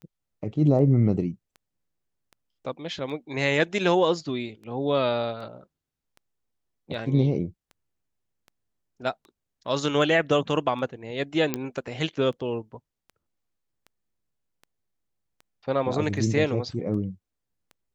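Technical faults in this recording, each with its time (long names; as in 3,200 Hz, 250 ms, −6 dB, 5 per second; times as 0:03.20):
scratch tick 78 rpm −32 dBFS
0:11.54: click −10 dBFS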